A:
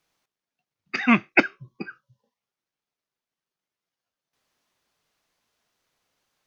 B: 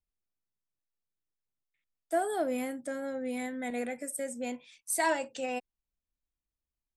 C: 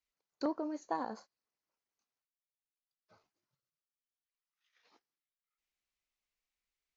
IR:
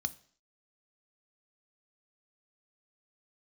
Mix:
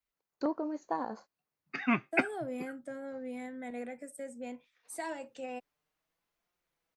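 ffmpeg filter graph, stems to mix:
-filter_complex "[0:a]flanger=delay=5.6:depth=2.1:regen=47:speed=0.35:shape=triangular,adelay=800,volume=-4.5dB[a];[1:a]lowpass=8.4k,agate=range=-33dB:threshold=-44dB:ratio=3:detection=peak,acrossover=split=380|3000[b][c][d];[c]acompressor=threshold=-31dB:ratio=6[e];[b][e][d]amix=inputs=3:normalize=0,volume=-5.5dB[f];[2:a]volume=2.5dB[g];[a][f][g]amix=inputs=3:normalize=0,equalizer=f=5.4k:w=0.58:g=-7"

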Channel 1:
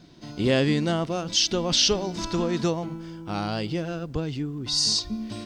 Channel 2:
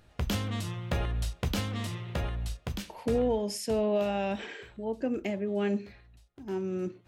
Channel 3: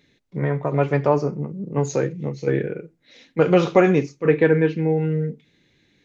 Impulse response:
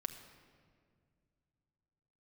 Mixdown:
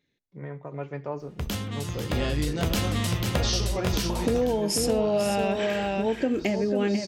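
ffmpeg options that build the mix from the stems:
-filter_complex "[0:a]flanger=delay=16:depth=4.3:speed=0.76,lowpass=f=6.8k:t=q:w=1.6,adelay=1700,volume=-3dB,asplit=2[a][b];[b]volume=-10.5dB[c];[1:a]highshelf=f=5.9k:g=5.5,dynaudnorm=f=310:g=9:m=11.5dB,adelay=1200,volume=-1dB,asplit=2[d][e];[e]volume=-7dB[f];[2:a]volume=-15dB,asplit=2[g][h];[h]apad=whole_len=315601[i];[a][i]sidechaingate=range=-20dB:threshold=-58dB:ratio=16:detection=peak[j];[c][f]amix=inputs=2:normalize=0,aecho=0:1:493:1[k];[j][d][g][k]amix=inputs=4:normalize=0,acompressor=threshold=-22dB:ratio=4"

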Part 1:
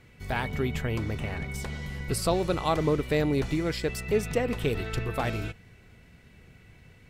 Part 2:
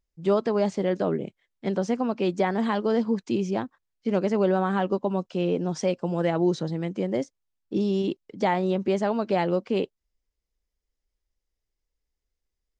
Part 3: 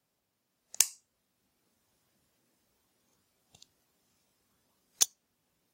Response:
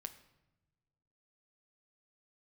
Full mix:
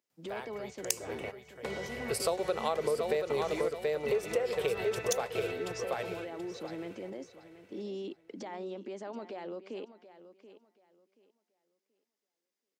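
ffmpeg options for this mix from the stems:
-filter_complex "[0:a]lowshelf=f=350:t=q:w=3:g=-9.5,volume=-1dB,afade=t=in:st=0.87:d=0.76:silence=0.251189,asplit=2[a][b];[b]volume=-6dB[c];[1:a]highpass=f=240:w=0.5412,highpass=f=240:w=1.3066,acompressor=threshold=-35dB:ratio=5,alimiter=level_in=9.5dB:limit=-24dB:level=0:latency=1:release=47,volume=-9.5dB,volume=0dB,asplit=3[d][e][f];[e]volume=-14dB[g];[2:a]adelay=100,volume=-1dB[h];[f]apad=whole_len=312965[i];[a][i]sidechaingate=range=-33dB:threshold=-46dB:ratio=16:detection=peak[j];[c][g]amix=inputs=2:normalize=0,aecho=0:1:730|1460|2190|2920:1|0.23|0.0529|0.0122[k];[j][d][h][k]amix=inputs=4:normalize=0,highpass=82,acompressor=threshold=-27dB:ratio=6"

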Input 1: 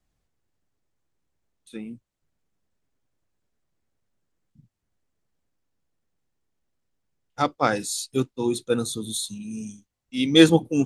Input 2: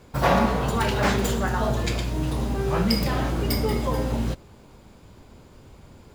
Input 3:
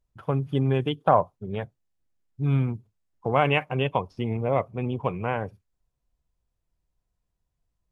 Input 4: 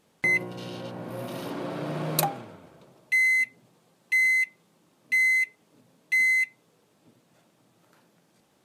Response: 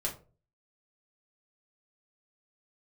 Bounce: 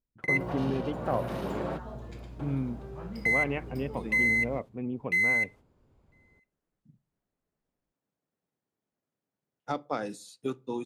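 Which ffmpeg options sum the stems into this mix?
-filter_complex "[0:a]highpass=170,acrossover=split=830|2300[a][b][c];[a]acompressor=threshold=-30dB:ratio=4[d];[b]acompressor=threshold=-36dB:ratio=4[e];[c]acompressor=threshold=-38dB:ratio=4[f];[d][e][f]amix=inputs=3:normalize=0,adelay=2300,volume=-1dB,asplit=2[g][h];[h]volume=-19.5dB[i];[1:a]adelay=250,volume=-17dB[j];[2:a]equalizer=f=250:t=o:w=1:g=12,equalizer=f=500:t=o:w=1:g=4,equalizer=f=2k:t=o:w=1:g=10,volume=-14.5dB,asplit=2[k][l];[3:a]agate=range=-12dB:threshold=-55dB:ratio=16:detection=peak,equalizer=f=270:w=1.5:g=-6,volume=3dB[m];[l]apad=whole_len=381127[n];[m][n]sidechaingate=range=-42dB:threshold=-55dB:ratio=16:detection=peak[o];[4:a]atrim=start_sample=2205[p];[i][p]afir=irnorm=-1:irlink=0[q];[g][j][k][o][q]amix=inputs=5:normalize=0,highshelf=f=2k:g=-12"

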